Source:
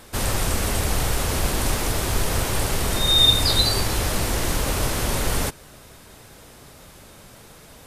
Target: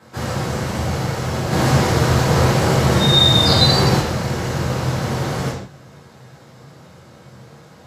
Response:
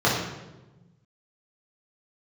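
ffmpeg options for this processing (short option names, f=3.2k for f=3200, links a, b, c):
-filter_complex "[0:a]asplit=3[a][b][c];[a]afade=t=out:st=1.5:d=0.02[d];[b]acontrast=83,afade=t=in:st=1.5:d=0.02,afade=t=out:st=3.98:d=0.02[e];[c]afade=t=in:st=3.98:d=0.02[f];[d][e][f]amix=inputs=3:normalize=0[g];[1:a]atrim=start_sample=2205,afade=t=out:st=0.25:d=0.01,atrim=end_sample=11466,asetrate=48510,aresample=44100[h];[g][h]afir=irnorm=-1:irlink=0,volume=-16.5dB"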